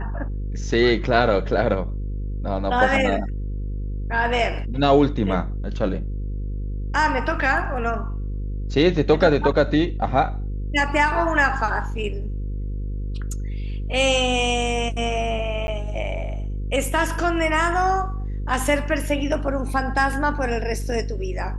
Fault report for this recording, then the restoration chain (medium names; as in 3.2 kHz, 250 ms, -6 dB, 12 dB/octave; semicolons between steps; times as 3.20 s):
buzz 50 Hz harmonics 10 -27 dBFS
15.67–15.68 s: dropout 11 ms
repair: de-hum 50 Hz, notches 10; interpolate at 15.67 s, 11 ms